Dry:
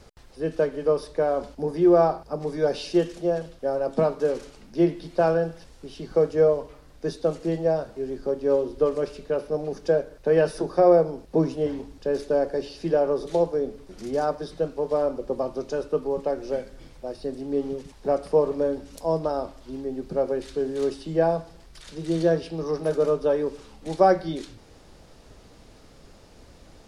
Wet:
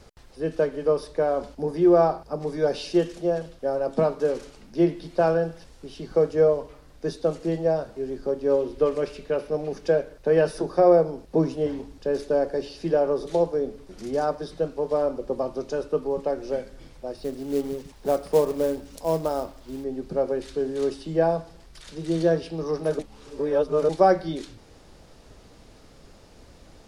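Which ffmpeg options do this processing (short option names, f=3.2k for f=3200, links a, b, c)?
-filter_complex "[0:a]asettb=1/sr,asplit=3[a][b][c];[a]atrim=end=8.604[d];[b]atrim=start=8.6:end=10.13,asetpts=PTS-STARTPTS,afade=t=in:d=0.004:c=qsin,afade=t=out:st=1.526:d=0.004:c=qsin,equalizer=f=2.4k:t=o:w=1:g=5[e];[c]atrim=start=10.126[f];[d][e]acrossfade=d=0.004:c1=hsin:c2=qsin[g];[g][f]acrossfade=d=0.004:c1=qsin:c2=hsin,asettb=1/sr,asplit=3[h][i][j];[h]atrim=end=17.174[k];[i]atrim=start=17.17:end=19.84,asetpts=PTS-STARTPTS,afade=t=in:d=0.004:c=qsin,afade=t=out:st=2.666:d=0.004:c=qsin,acrusher=bits=5:mode=log:mix=0:aa=0.000001[l];[j]atrim=start=19.836[m];[k][l]acrossfade=d=0.004:c1=hsin:c2=qsin[n];[n][m]acrossfade=d=0.004:c1=qsin:c2=hsin,asplit=3[o][p][q];[o]atrim=end=22.992[r];[p]atrim=start=22.988:end=23.892,asetpts=PTS-STARTPTS,areverse[s];[q]atrim=start=23.888[t];[r][s]acrossfade=d=0.004:c1=hsin:c2=hsin[u];[u][t]acrossfade=d=0.004:c1=hsin:c2=hsin"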